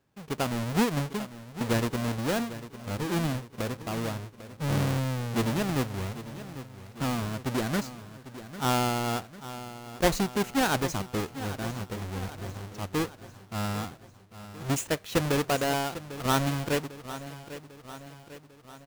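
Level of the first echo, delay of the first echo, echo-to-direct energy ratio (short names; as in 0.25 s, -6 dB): -14.0 dB, 0.798 s, -12.5 dB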